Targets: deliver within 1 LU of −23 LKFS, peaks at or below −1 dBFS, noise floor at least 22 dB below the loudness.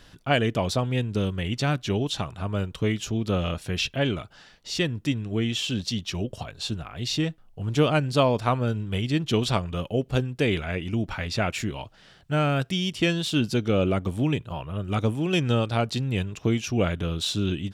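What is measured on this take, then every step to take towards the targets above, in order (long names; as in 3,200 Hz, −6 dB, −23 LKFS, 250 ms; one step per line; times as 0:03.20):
integrated loudness −26.5 LKFS; sample peak −8.0 dBFS; target loudness −23.0 LKFS
→ level +3.5 dB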